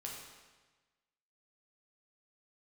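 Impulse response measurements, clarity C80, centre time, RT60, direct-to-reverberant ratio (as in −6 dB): 4.0 dB, 63 ms, 1.3 s, −2.5 dB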